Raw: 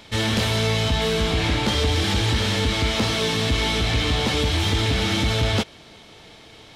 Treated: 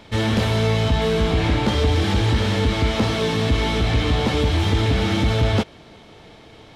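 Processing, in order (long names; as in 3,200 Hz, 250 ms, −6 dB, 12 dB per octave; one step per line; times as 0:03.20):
high-shelf EQ 2,100 Hz −10 dB
level +3.5 dB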